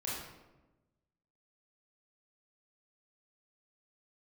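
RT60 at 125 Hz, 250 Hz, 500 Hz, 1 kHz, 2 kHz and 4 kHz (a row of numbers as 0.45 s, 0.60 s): 1.5 s, 1.4 s, 1.2 s, 1.0 s, 0.80 s, 0.65 s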